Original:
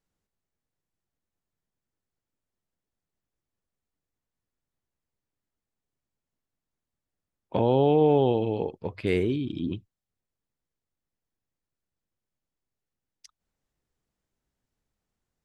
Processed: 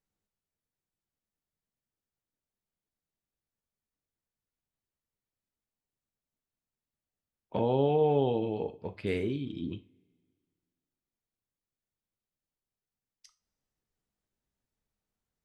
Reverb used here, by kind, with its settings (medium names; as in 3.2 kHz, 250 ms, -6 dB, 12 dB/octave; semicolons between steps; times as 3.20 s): two-slope reverb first 0.3 s, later 2 s, from -28 dB, DRR 7.5 dB; trim -6 dB